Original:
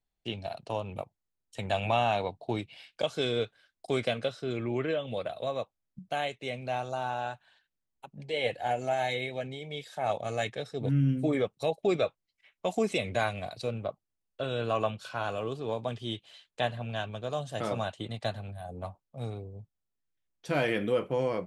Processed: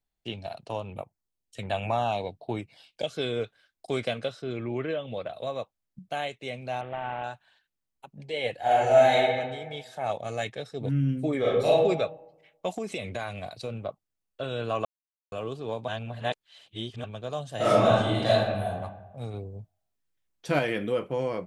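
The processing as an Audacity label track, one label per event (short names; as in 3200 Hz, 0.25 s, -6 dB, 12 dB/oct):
0.860000	3.440000	LFO notch saw down 1.3 Hz 760–7900 Hz
4.420000	5.340000	air absorption 82 m
6.810000	7.240000	CVSD 16 kbps
8.590000	9.170000	reverb throw, RT60 1.4 s, DRR -8 dB
11.390000	11.840000	reverb throw, RT60 0.95 s, DRR -8 dB
12.760000	13.710000	compressor, threshold -28 dBFS
14.850000	15.320000	mute
15.880000	17.040000	reverse
17.560000	18.670000	reverb throw, RT60 1.1 s, DRR -11 dB
19.340000	20.590000	gain +4 dB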